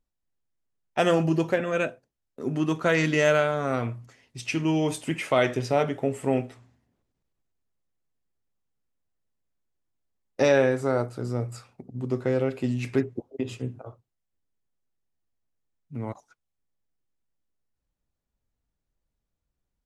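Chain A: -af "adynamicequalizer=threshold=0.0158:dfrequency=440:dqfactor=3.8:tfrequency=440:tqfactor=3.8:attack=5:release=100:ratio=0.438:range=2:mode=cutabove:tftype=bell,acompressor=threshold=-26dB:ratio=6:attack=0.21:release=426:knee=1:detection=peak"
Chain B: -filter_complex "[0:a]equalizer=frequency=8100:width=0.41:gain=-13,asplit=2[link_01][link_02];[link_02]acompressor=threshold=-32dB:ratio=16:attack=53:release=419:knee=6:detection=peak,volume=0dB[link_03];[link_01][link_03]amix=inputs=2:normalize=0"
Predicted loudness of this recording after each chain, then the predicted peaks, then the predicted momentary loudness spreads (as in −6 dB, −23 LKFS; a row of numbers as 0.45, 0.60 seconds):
−36.0, −24.5 LKFS; −22.5, −7.0 dBFS; 10, 15 LU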